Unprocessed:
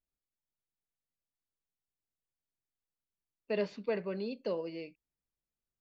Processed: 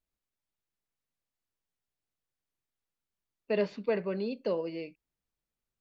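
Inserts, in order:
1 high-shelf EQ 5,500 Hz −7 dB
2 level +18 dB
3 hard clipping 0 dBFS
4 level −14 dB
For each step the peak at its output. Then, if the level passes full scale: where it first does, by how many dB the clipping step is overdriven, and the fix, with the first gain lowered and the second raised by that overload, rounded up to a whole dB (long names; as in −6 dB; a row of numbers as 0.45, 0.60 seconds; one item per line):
−21.5, −3.5, −3.5, −17.5 dBFS
no step passes full scale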